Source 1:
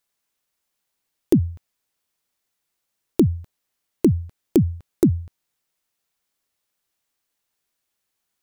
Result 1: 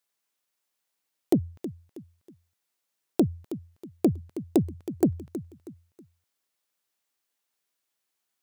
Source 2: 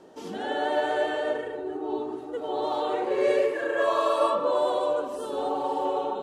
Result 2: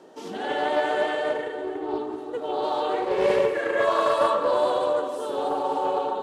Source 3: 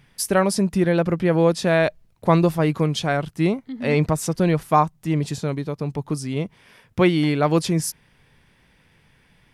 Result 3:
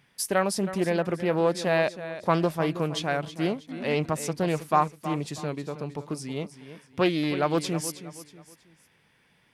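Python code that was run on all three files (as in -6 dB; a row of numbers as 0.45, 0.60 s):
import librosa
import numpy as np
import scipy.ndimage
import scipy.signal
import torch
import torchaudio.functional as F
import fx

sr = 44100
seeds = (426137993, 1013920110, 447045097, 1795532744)

y = fx.highpass(x, sr, hz=230.0, slope=6)
y = fx.echo_feedback(y, sr, ms=320, feedback_pct=35, wet_db=-13.0)
y = fx.doppler_dist(y, sr, depth_ms=0.18)
y = librosa.util.normalize(y) * 10.0 ** (-9 / 20.0)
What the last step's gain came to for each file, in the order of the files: -3.0, +2.5, -4.5 dB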